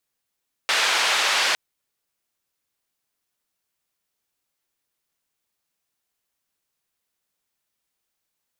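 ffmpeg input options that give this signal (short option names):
-f lavfi -i "anoisesrc=c=white:d=0.86:r=44100:seed=1,highpass=f=750,lowpass=f=3800,volume=-7.9dB"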